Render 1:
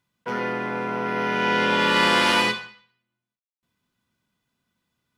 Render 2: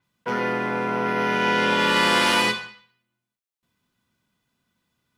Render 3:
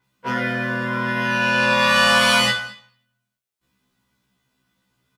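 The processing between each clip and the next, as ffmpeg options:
ffmpeg -i in.wav -filter_complex "[0:a]asplit=2[link_01][link_02];[link_02]alimiter=limit=-16.5dB:level=0:latency=1:release=188,volume=0dB[link_03];[link_01][link_03]amix=inputs=2:normalize=0,adynamicequalizer=threshold=0.02:dfrequency=6200:dqfactor=0.7:tfrequency=6200:tqfactor=0.7:attack=5:release=100:ratio=0.375:range=2.5:mode=boostabove:tftype=highshelf,volume=-3.5dB" out.wav
ffmpeg -i in.wav -af "aecho=1:1:219:0.0631,afftfilt=real='re*1.73*eq(mod(b,3),0)':imag='im*1.73*eq(mod(b,3),0)':win_size=2048:overlap=0.75,volume=6.5dB" out.wav

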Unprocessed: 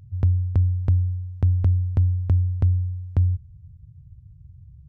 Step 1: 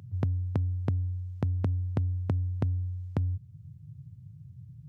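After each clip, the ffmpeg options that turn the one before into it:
ffmpeg -i in.wav -af "alimiter=limit=-18.5dB:level=0:latency=1:release=444,highpass=frequency=120:width=0.5412,highpass=frequency=120:width=1.3066,volume=6dB" out.wav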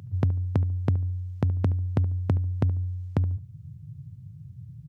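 ffmpeg -i in.wav -filter_complex "[0:a]asplit=2[link_01][link_02];[link_02]adelay=72,lowpass=frequency=1400:poles=1,volume=-15.5dB,asplit=2[link_03][link_04];[link_04]adelay=72,lowpass=frequency=1400:poles=1,volume=0.27,asplit=2[link_05][link_06];[link_06]adelay=72,lowpass=frequency=1400:poles=1,volume=0.27[link_07];[link_01][link_03][link_05][link_07]amix=inputs=4:normalize=0,volume=4.5dB" out.wav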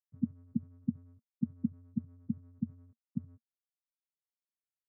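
ffmpeg -i in.wav -af "acrusher=samples=29:mix=1:aa=0.000001:lfo=1:lforange=17.4:lforate=2,afftfilt=real='re*gte(hypot(re,im),0.398)':imag='im*gte(hypot(re,im),0.398)':win_size=1024:overlap=0.75,highpass=frequency=200:width=0.5412,highpass=frequency=200:width=1.3066,equalizer=frequency=230:width_type=q:width=4:gain=8,equalizer=frequency=360:width_type=q:width=4:gain=-9,equalizer=frequency=540:width_type=q:width=4:gain=3,equalizer=frequency=820:width_type=q:width=4:gain=-7,equalizer=frequency=1200:width_type=q:width=4:gain=9,lowpass=frequency=2100:width=0.5412,lowpass=frequency=2100:width=1.3066" out.wav

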